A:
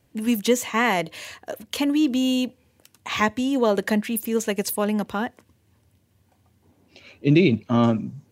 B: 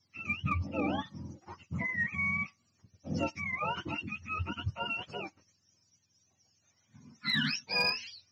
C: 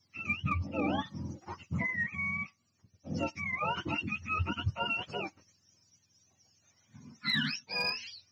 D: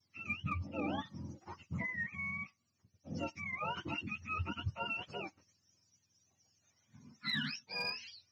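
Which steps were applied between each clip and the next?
frequency axis turned over on the octave scale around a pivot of 760 Hz; transistor ladder low-pass 6,000 Hz, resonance 75%; harmonic generator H 5 −22 dB, 7 −27 dB, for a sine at −18 dBFS
speech leveller 0.5 s
pitch vibrato 0.36 Hz 14 cents; level −6 dB

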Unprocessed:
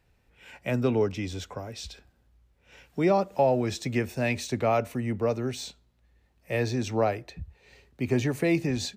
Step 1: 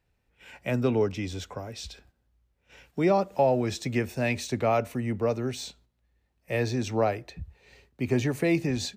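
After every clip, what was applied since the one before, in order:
noise gate −58 dBFS, range −7 dB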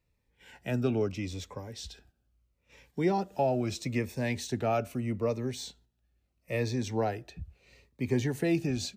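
phaser whose notches keep moving one way falling 0.77 Hz
level −2.5 dB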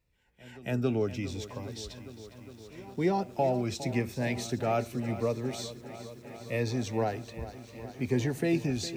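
backwards echo 275 ms −21 dB
feedback echo at a low word length 408 ms, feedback 80%, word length 9 bits, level −14 dB

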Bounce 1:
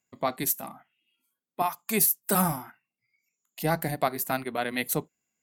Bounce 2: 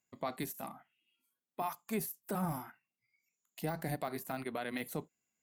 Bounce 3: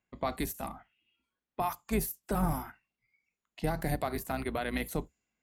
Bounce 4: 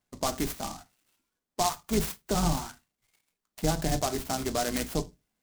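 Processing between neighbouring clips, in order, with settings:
de-essing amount 70%; brickwall limiter −21.5 dBFS, peak gain reduction 9 dB; level −4.5 dB
sub-octave generator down 2 octaves, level −3 dB; low-pass that shuts in the quiet parts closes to 2,800 Hz, open at −36.5 dBFS; level +5 dB
convolution reverb RT60 0.25 s, pre-delay 3 ms, DRR 7.5 dB; short delay modulated by noise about 5,500 Hz, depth 0.096 ms; level +3 dB

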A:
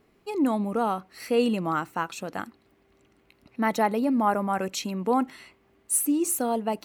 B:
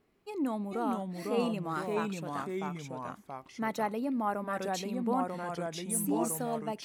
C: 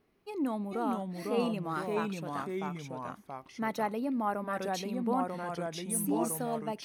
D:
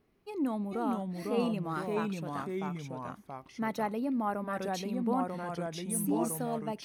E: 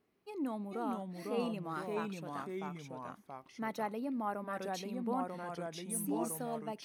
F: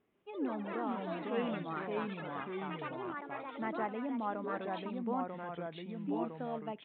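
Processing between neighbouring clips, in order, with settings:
delay with pitch and tempo change per echo 409 ms, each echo −2 semitones, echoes 2; level −8.5 dB
notch filter 7,400 Hz, Q 5.2
low-shelf EQ 220 Hz +5.5 dB; level −1.5 dB
high-pass filter 200 Hz 6 dB per octave; level −4 dB
delay with pitch and tempo change per echo 141 ms, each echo +6 semitones, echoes 3, each echo −6 dB; downsampling to 8,000 Hz

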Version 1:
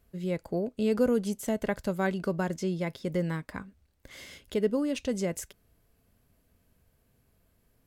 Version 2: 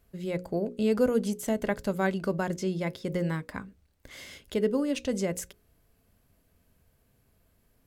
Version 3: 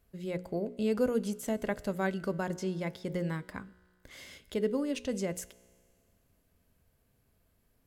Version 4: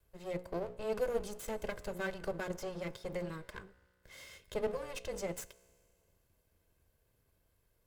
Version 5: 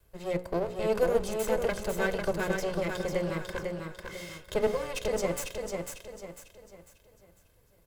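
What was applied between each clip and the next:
mains-hum notches 60/120/180/240/300/360/420/480/540 Hz; level +1.5 dB
tuned comb filter 61 Hz, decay 2 s, harmonics all, mix 40%
lower of the sound and its delayed copy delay 1.9 ms; level −2 dB
repeating echo 498 ms, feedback 37%, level −4.5 dB; level +8 dB

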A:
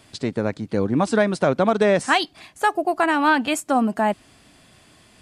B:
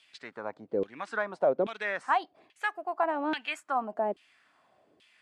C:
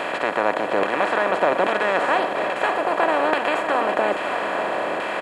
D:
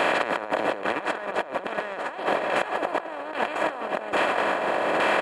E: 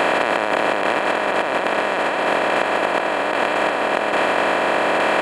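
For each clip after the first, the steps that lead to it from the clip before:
high-shelf EQ 7,200 Hz +5 dB; auto-filter band-pass saw down 1.2 Hz 380–3,100 Hz; level −3 dB
compressor on every frequency bin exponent 0.2; single-tap delay 560 ms −9 dB
compressor whose output falls as the input rises −26 dBFS, ratio −0.5
compressor on every frequency bin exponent 0.2

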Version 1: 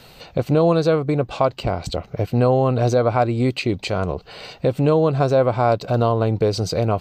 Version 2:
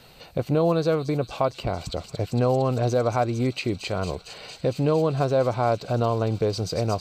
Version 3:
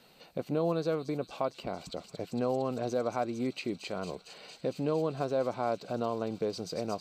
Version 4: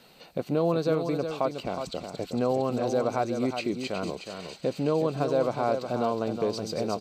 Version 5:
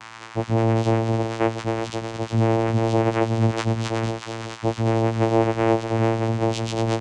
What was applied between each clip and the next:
delay with a high-pass on its return 228 ms, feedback 85%, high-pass 5,000 Hz, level −3 dB; level −5 dB
low shelf with overshoot 140 Hz −10.5 dB, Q 1.5; level −9 dB
single-tap delay 366 ms −7.5 dB; level +4.5 dB
every partial snapped to a pitch grid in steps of 6 semitones; steady tone 2,500 Hz −36 dBFS; channel vocoder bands 4, saw 113 Hz; level +4.5 dB

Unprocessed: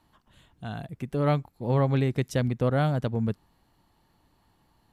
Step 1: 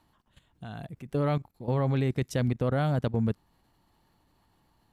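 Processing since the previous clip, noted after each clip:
output level in coarse steps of 14 dB
level +2.5 dB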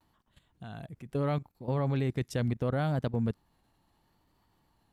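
pitch vibrato 0.74 Hz 51 cents
level −3 dB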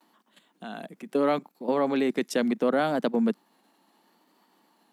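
Butterworth high-pass 200 Hz 48 dB per octave
level +8.5 dB

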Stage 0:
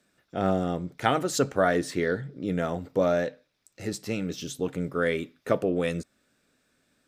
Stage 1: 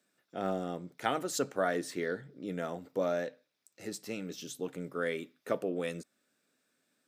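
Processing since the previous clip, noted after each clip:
high-pass filter 190 Hz 12 dB per octave
high-shelf EQ 8,900 Hz +6.5 dB
level −7.5 dB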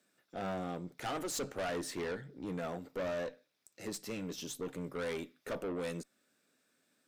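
tube saturation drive 36 dB, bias 0.35
level +2.5 dB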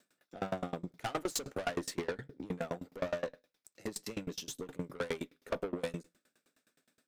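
on a send at −23 dB: convolution reverb RT60 0.45 s, pre-delay 7 ms
on the sum: tremolo with a ramp in dB decaying 9.6 Hz, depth 27 dB
level +8 dB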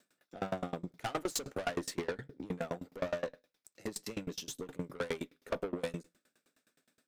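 no processing that can be heard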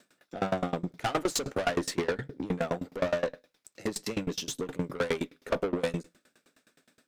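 in parallel at −4.5 dB: hard clipping −40 dBFS, distortion −5 dB
on the sum: high-shelf EQ 9,900 Hz −7.5 dB
level +5.5 dB

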